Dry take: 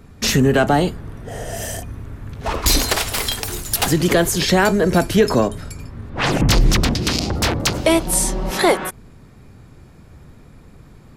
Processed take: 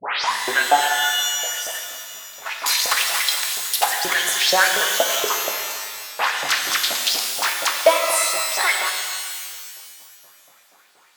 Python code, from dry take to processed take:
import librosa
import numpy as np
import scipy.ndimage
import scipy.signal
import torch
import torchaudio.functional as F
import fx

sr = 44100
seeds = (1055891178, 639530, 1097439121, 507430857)

y = fx.tape_start_head(x, sr, length_s=0.54)
y = fx.filter_lfo_highpass(y, sr, shape='saw_up', hz=4.2, low_hz=570.0, high_hz=6100.0, q=3.2)
y = fx.rev_shimmer(y, sr, seeds[0], rt60_s=1.8, semitones=12, shimmer_db=-2, drr_db=2.5)
y = y * librosa.db_to_amplitude(-4.5)